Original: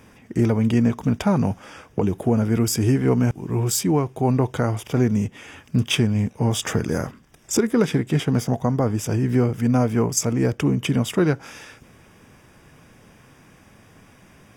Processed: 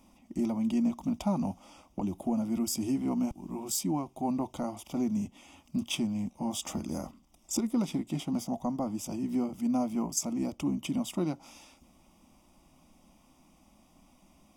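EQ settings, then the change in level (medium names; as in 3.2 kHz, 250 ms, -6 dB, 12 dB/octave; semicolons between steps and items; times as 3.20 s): bass shelf 60 Hz +6 dB; static phaser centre 440 Hz, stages 6; -8.0 dB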